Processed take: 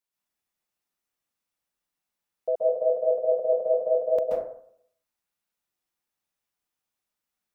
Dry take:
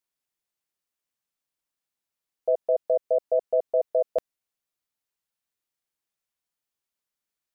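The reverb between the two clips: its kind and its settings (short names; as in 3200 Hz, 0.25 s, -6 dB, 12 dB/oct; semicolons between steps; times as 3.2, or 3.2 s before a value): plate-style reverb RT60 0.63 s, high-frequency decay 0.4×, pre-delay 0.12 s, DRR -5.5 dB; gain -3.5 dB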